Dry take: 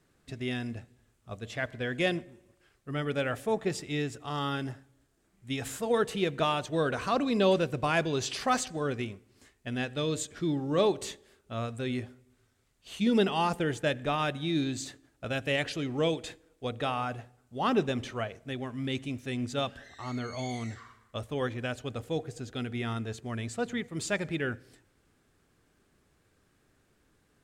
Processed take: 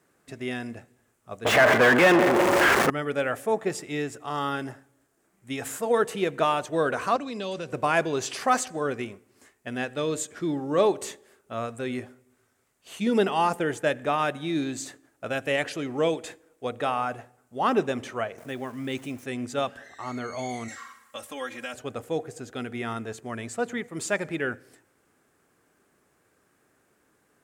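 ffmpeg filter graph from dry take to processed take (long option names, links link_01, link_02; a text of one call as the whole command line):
ffmpeg -i in.wav -filter_complex "[0:a]asettb=1/sr,asplit=3[link_01][link_02][link_03];[link_01]atrim=end=1.454[link_04];[link_02]atrim=start=1.45:end=2.9,asetpts=PTS-STARTPTS,afade=type=in:duration=0.004:curve=qsin,afade=type=out:start_time=1.446:duration=0.004:curve=qsin,aeval=exprs='val(0)+0.5*0.0299*sgn(val(0))':channel_layout=same,asplit=2[link_05][link_06];[link_06]highpass=frequency=720:poles=1,volume=34dB,asoftclip=type=tanh:threshold=-13.5dB[link_07];[link_05][link_07]amix=inputs=2:normalize=0,lowpass=frequency=3500:poles=1,volume=-6dB,adynamicequalizer=threshold=0.01:dfrequency=4800:dqfactor=0.7:tfrequency=4800:tqfactor=0.7:attack=5:release=100:ratio=0.375:range=4:mode=cutabove:tftype=highshelf[link_08];[link_03]atrim=start=2.896[link_09];[link_04][link_08]acrossfade=duration=0.004:curve1=hsin:curve2=qsin[link_10];[link_10][link_09]acrossfade=duration=0.004:curve1=qsin:curve2=hsin,asettb=1/sr,asplit=3[link_11][link_12][link_13];[link_11]atrim=end=7.164[link_14];[link_12]atrim=start=7.16:end=7.73,asetpts=PTS-STARTPTS,afade=type=in:duration=0.004:curve=qsin,afade=type=out:start_time=0.566:duration=0.004:curve=qsin,acrossover=split=130|3000[link_15][link_16][link_17];[link_16]acompressor=threshold=-36dB:ratio=4:attack=3.2:release=140:knee=2.83:detection=peak[link_18];[link_15][link_18][link_17]amix=inputs=3:normalize=0,lowpass=6800[link_19];[link_13]atrim=start=7.726[link_20];[link_14][link_19]acrossfade=duration=0.004:curve1=hsin:curve2=qsin[link_21];[link_21][link_20]acrossfade=duration=0.004:curve1=qsin:curve2=hsin,asettb=1/sr,asplit=3[link_22][link_23][link_24];[link_22]atrim=end=18.384[link_25];[link_23]atrim=start=18.38:end=19.24,asetpts=PTS-STARTPTS,afade=type=in:duration=0.004:curve=qsin,afade=type=out:start_time=0.856:duration=0.004:curve=qsin,acompressor=mode=upward:threshold=-36dB:ratio=2.5:attack=3.2:release=140:knee=2.83:detection=peak,aeval=exprs='val(0)*gte(abs(val(0)),0.00282)':channel_layout=same[link_26];[link_24]atrim=start=19.236[link_27];[link_25][link_26]acrossfade=duration=0.004:curve1=hsin:curve2=qsin[link_28];[link_28][link_27]acrossfade=duration=0.004:curve1=qsin:curve2=hsin,asettb=1/sr,asplit=3[link_29][link_30][link_31];[link_29]atrim=end=20.684[link_32];[link_30]atrim=start=20.68:end=21.74,asetpts=PTS-STARTPTS,afade=type=in:duration=0.004:curve=qsin,afade=type=out:start_time=1.056:duration=0.004:curve=qsin,tiltshelf=frequency=1300:gain=-7.5,aecho=1:1:3.7:0.99,atrim=end_sample=46746,acompressor=threshold=-38dB:ratio=2:attack=3.2:release=140:knee=1:detection=peak[link_33];[link_31]atrim=start=21.736[link_34];[link_32][link_33]acrossfade=duration=0.004:curve1=hsin:curve2=qsin[link_35];[link_35][link_34]acrossfade=duration=0.004:curve1=qsin:curve2=hsin,highpass=frequency=430:poles=1,equalizer=frequency=3800:width_type=o:width=1.4:gain=-9,volume=7dB" out.wav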